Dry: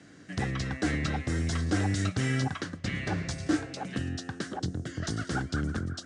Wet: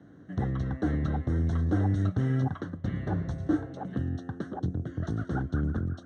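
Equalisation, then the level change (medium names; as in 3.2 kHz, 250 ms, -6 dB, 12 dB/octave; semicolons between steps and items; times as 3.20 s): boxcar filter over 18 samples; bass shelf 160 Hz +4.5 dB; 0.0 dB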